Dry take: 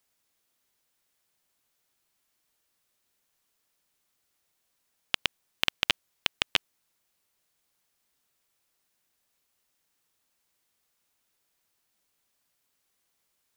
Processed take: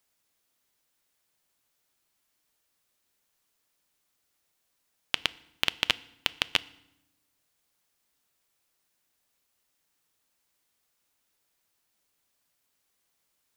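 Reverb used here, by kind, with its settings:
feedback delay network reverb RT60 0.84 s, low-frequency decay 1.55×, high-frequency decay 0.85×, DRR 17.5 dB

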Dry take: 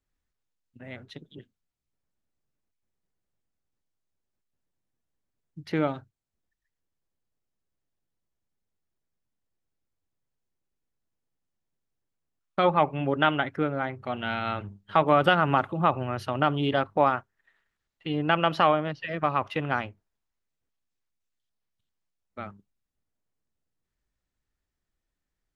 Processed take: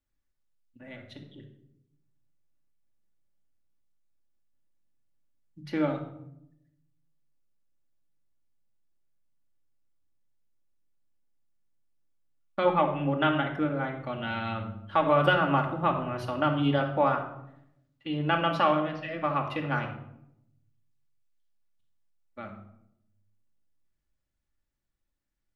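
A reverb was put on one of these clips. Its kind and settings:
rectangular room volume 2,100 cubic metres, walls furnished, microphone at 2.4 metres
level −5 dB

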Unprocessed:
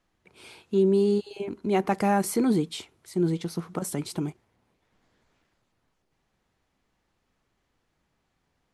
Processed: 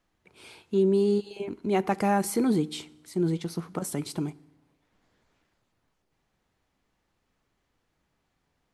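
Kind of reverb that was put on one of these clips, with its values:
feedback delay network reverb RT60 0.89 s, low-frequency decay 1.25×, high-frequency decay 0.9×, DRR 20 dB
level −1 dB

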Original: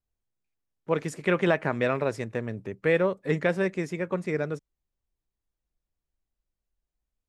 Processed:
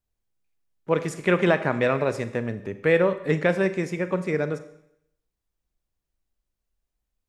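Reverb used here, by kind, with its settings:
four-comb reverb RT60 0.74 s, combs from 30 ms, DRR 11 dB
level +3 dB

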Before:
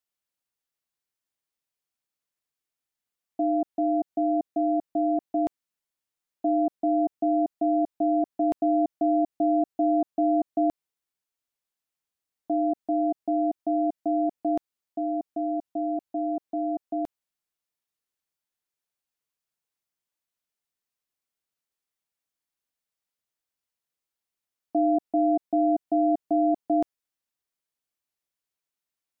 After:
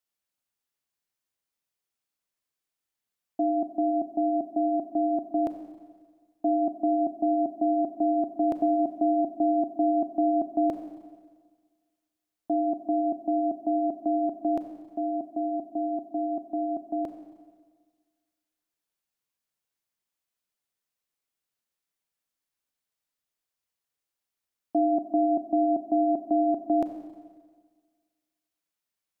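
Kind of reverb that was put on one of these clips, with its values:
four-comb reverb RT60 1.6 s, combs from 30 ms, DRR 7 dB

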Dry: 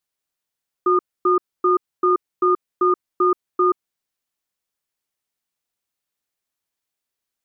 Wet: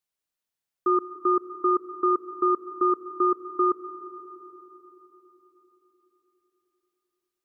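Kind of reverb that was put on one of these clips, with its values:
comb and all-pass reverb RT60 4.5 s, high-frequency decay 0.4×, pre-delay 85 ms, DRR 12.5 dB
level −4.5 dB

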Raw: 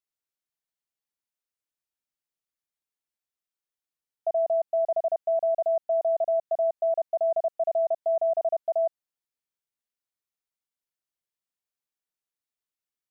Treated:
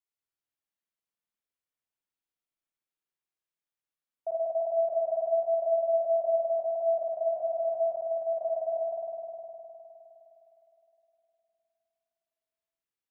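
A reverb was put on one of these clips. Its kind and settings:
spring reverb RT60 3.4 s, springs 51 ms, chirp 70 ms, DRR −4 dB
level −6.5 dB

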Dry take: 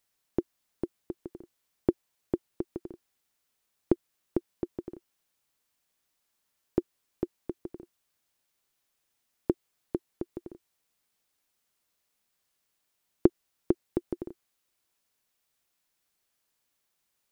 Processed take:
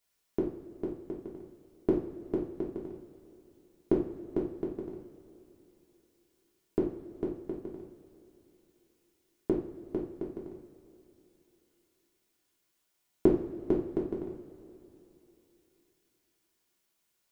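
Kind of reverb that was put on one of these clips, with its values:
coupled-rooms reverb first 0.45 s, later 3.2 s, from −18 dB, DRR −4 dB
level −4.5 dB

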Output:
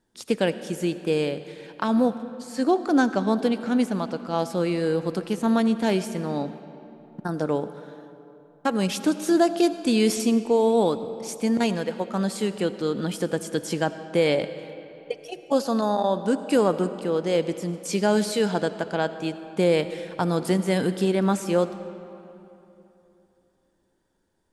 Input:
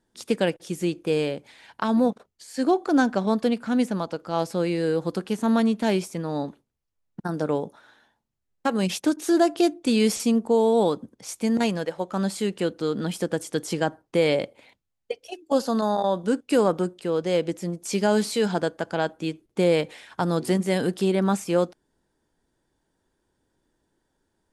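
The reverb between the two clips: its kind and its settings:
comb and all-pass reverb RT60 3.1 s, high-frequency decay 0.65×, pre-delay 40 ms, DRR 12 dB

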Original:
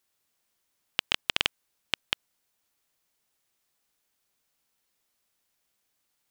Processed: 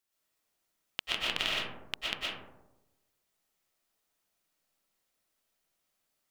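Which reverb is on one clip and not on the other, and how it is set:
comb and all-pass reverb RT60 1 s, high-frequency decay 0.3×, pre-delay 80 ms, DRR −6 dB
level −8.5 dB

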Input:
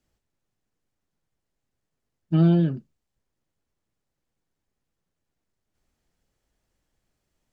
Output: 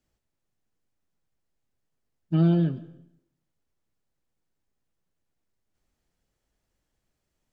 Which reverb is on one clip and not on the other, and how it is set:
comb and all-pass reverb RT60 0.77 s, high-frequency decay 0.9×, pre-delay 80 ms, DRR 16.5 dB
level −2.5 dB

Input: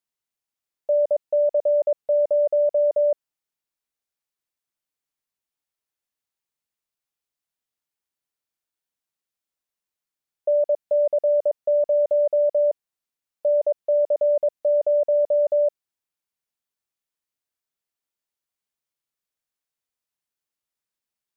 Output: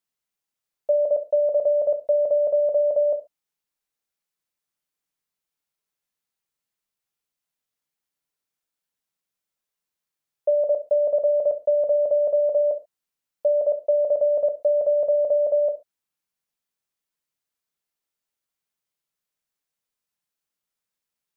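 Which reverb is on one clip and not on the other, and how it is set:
reverb whose tail is shaped and stops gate 150 ms falling, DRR 7 dB
level +1 dB

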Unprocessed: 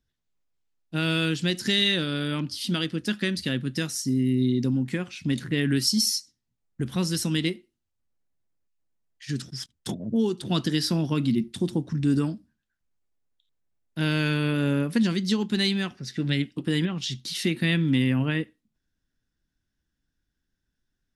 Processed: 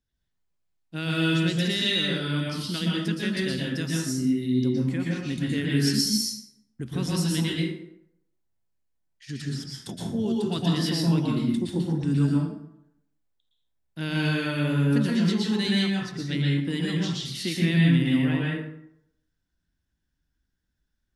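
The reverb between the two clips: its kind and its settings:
dense smooth reverb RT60 0.75 s, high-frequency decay 0.6×, pre-delay 105 ms, DRR −4 dB
level −5.5 dB

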